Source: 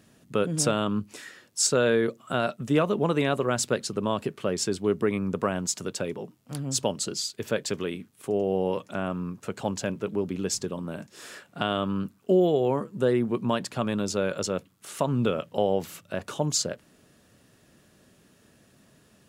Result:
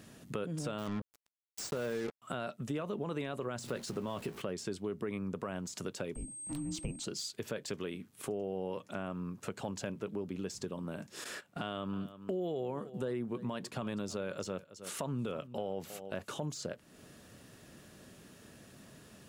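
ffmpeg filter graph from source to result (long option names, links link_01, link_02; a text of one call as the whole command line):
ffmpeg -i in.wav -filter_complex "[0:a]asettb=1/sr,asplit=3[link_01][link_02][link_03];[link_01]atrim=end=0.784[link_04];[link_02]atrim=start=0.78:end=2.22,asetpts=PTS-STARTPTS,afade=type=in:duration=0.004:curve=qsin,afade=type=out:start_time=1.436:duration=0.004:curve=qsin,highshelf=frequency=5300:gain=-7.5,acrusher=bits=4:mix=0:aa=0.5[link_05];[link_03]atrim=start=2.216[link_06];[link_04][link_05]acrossfade=duration=0.004:curve1=hsin:curve2=qsin[link_07];[link_07][link_06]acrossfade=duration=0.004:curve1=qsin:curve2=hsin,asettb=1/sr,asplit=3[link_08][link_09][link_10];[link_08]atrim=end=3.604[link_11];[link_09]atrim=start=3.6:end=4.42,asetpts=PTS-STARTPTS,afade=type=in:duration=0.004:curve=qsin,afade=type=out:start_time=0.816:duration=0.004:curve=qsin,aeval=exprs='val(0)+0.5*0.0119*sgn(val(0))':channel_layout=same,asplit=2[link_12][link_13];[link_13]adelay=17,volume=-11.5dB[link_14];[link_12][link_14]amix=inputs=2:normalize=0,atrim=end_sample=36162[link_15];[link_10]atrim=start=4.416[link_16];[link_11][link_15]acrossfade=duration=0.004:curve1=hsin:curve2=qsin[link_17];[link_17][link_16]acrossfade=duration=0.004:curve1=qsin:curve2=hsin,asettb=1/sr,asplit=3[link_18][link_19][link_20];[link_18]atrim=end=6.154[link_21];[link_19]atrim=start=6.15:end=7.04,asetpts=PTS-STARTPTS,afade=type=in:duration=0.004:curve=qsin,afade=type=out:start_time=0.886:duration=0.004:curve=qsin,aemphasis=mode=reproduction:type=cd,afreqshift=-440,aeval=exprs='val(0)+0.00794*sin(2*PI*8400*n/s)':channel_layout=same[link_22];[link_20]atrim=start=7.036[link_23];[link_21][link_22]acrossfade=duration=0.004:curve1=hsin:curve2=qsin[link_24];[link_24][link_23]acrossfade=duration=0.004:curve1=qsin:curve2=hsin,asettb=1/sr,asplit=3[link_25][link_26][link_27];[link_25]atrim=end=11.244[link_28];[link_26]atrim=start=11.24:end=16.41,asetpts=PTS-STARTPTS,afade=type=in:duration=0.004:curve=qsin,afade=type=out:start_time=5.166:duration=0.004:curve=qsin,agate=range=-12dB:threshold=-46dB:ratio=16:release=100:detection=peak,aecho=1:1:319:0.1,atrim=end_sample=227997[link_29];[link_27]atrim=start=16.406[link_30];[link_28][link_29]acrossfade=duration=0.004:curve1=hsin:curve2=qsin[link_31];[link_31][link_30]acrossfade=duration=0.004:curve1=qsin:curve2=hsin,deesser=0.65,alimiter=limit=-17dB:level=0:latency=1:release=11,acompressor=threshold=-45dB:ratio=2.5,volume=3.5dB" out.wav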